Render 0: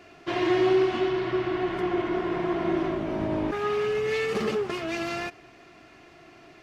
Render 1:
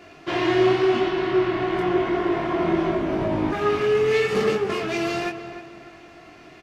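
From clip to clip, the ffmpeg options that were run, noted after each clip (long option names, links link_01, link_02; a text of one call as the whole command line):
ffmpeg -i in.wav -filter_complex "[0:a]flanger=delay=20:depth=3.7:speed=0.88,asplit=2[link_01][link_02];[link_02]adelay=301,lowpass=frequency=2300:poles=1,volume=-10dB,asplit=2[link_03][link_04];[link_04]adelay=301,lowpass=frequency=2300:poles=1,volume=0.42,asplit=2[link_05][link_06];[link_06]adelay=301,lowpass=frequency=2300:poles=1,volume=0.42,asplit=2[link_07][link_08];[link_08]adelay=301,lowpass=frequency=2300:poles=1,volume=0.42[link_09];[link_01][link_03][link_05][link_07][link_09]amix=inputs=5:normalize=0,volume=7.5dB" out.wav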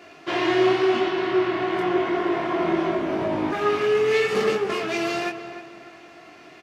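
ffmpeg -i in.wav -af "highpass=frequency=270:poles=1,volume=1dB" out.wav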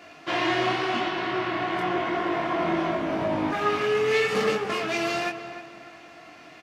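ffmpeg -i in.wav -af "equalizer=frequency=380:width_type=o:width=0.2:gain=-12.5" out.wav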